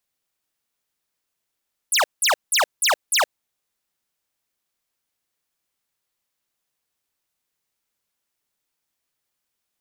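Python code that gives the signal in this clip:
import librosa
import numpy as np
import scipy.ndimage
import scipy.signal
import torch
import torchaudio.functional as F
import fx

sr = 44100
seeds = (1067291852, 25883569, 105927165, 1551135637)

y = fx.laser_zaps(sr, level_db=-17.5, start_hz=12000.0, end_hz=500.0, length_s=0.12, wave='square', shots=5, gap_s=0.18)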